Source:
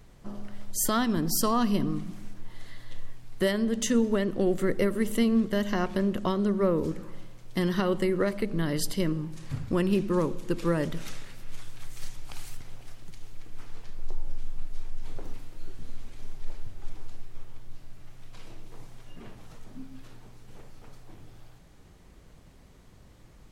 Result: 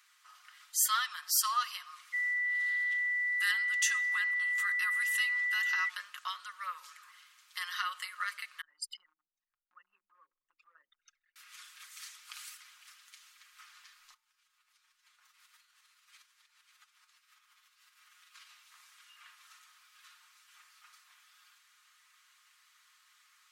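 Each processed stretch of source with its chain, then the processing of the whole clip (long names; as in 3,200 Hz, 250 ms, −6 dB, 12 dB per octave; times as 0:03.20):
0:02.12–0:05.88: steady tone 2,100 Hz −32 dBFS + frequency shifter −130 Hz
0:08.61–0:11.36: spectral envelope exaggerated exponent 3 + parametric band 310 Hz +11 dB 0.27 octaves + downward compressor 1.5 to 1, threshold −27 dBFS
0:14.14–0:18.49: lower of the sound and its delayed copy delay 9.7 ms + downward compressor 20 to 1, threshold −39 dBFS + single-tap delay 543 ms −8 dB
whole clip: elliptic high-pass filter 1,200 Hz, stop band 70 dB; comb filter 5.6 ms, depth 53%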